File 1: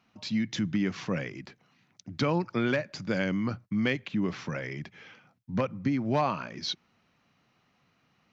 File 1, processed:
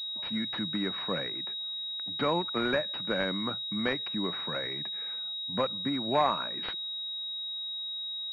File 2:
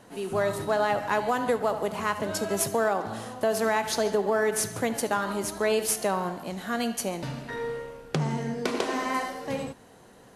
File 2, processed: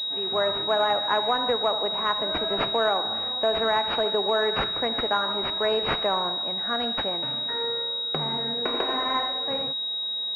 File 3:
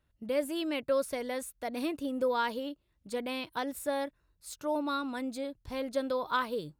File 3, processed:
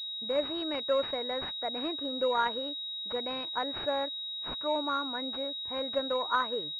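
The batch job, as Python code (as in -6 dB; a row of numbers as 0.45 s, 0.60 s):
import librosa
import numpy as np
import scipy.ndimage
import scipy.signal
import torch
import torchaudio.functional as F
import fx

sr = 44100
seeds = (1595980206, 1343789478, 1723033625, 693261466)

y = fx.highpass(x, sr, hz=730.0, slope=6)
y = fx.pwm(y, sr, carrier_hz=3800.0)
y = y * 10.0 ** (5.0 / 20.0)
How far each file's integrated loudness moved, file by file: -0.5 LU, +3.5 LU, +2.0 LU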